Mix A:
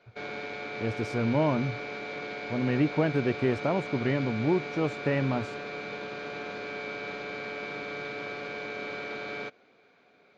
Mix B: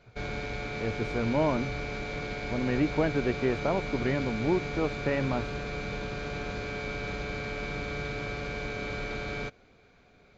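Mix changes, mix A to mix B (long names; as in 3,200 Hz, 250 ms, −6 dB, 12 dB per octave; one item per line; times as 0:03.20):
speech: add bass and treble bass −4 dB, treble −12 dB
background: remove band-pass filter 270–4,600 Hz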